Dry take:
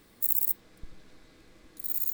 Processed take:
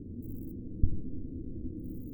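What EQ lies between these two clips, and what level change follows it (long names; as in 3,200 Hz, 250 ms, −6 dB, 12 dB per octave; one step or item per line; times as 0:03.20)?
inverse Chebyshev low-pass filter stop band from 930 Hz, stop band 50 dB
parametric band 89 Hz +14 dB 0.47 octaves
parametric band 250 Hz +7.5 dB 0.25 octaves
+16.5 dB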